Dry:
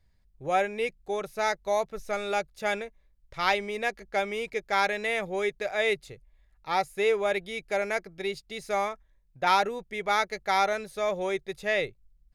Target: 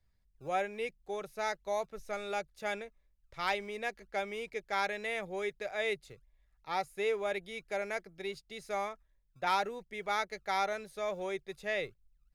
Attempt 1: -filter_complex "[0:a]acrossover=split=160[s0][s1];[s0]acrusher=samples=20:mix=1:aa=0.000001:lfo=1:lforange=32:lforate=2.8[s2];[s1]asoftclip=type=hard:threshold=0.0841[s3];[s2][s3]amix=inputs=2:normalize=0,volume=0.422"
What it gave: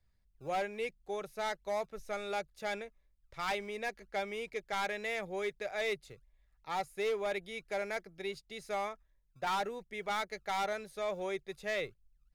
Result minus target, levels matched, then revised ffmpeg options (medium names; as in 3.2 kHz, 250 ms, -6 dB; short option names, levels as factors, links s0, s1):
hard clipper: distortion +24 dB
-filter_complex "[0:a]acrossover=split=160[s0][s1];[s0]acrusher=samples=20:mix=1:aa=0.000001:lfo=1:lforange=32:lforate=2.8[s2];[s1]asoftclip=type=hard:threshold=0.266[s3];[s2][s3]amix=inputs=2:normalize=0,volume=0.422"